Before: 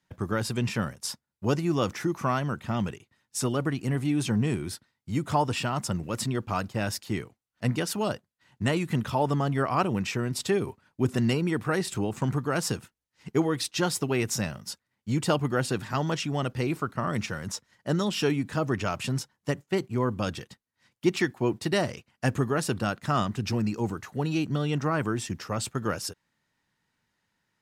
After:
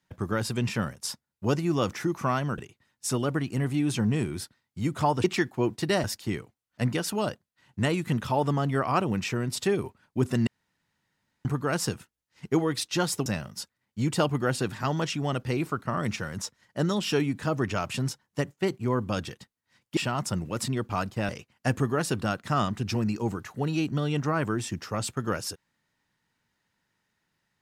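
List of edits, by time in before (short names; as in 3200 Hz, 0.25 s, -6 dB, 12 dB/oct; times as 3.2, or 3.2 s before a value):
2.58–2.89 cut
5.55–6.87 swap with 21.07–21.87
11.3–12.28 room tone
14.09–14.36 cut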